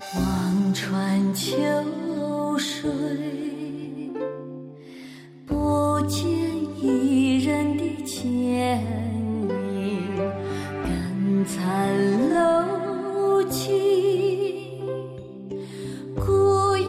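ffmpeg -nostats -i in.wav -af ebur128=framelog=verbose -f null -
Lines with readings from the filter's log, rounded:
Integrated loudness:
  I:         -24.2 LUFS
  Threshold: -34.5 LUFS
Loudness range:
  LRA:         5.7 LU
  Threshold: -44.7 LUFS
  LRA low:   -28.1 LUFS
  LRA high:  -22.4 LUFS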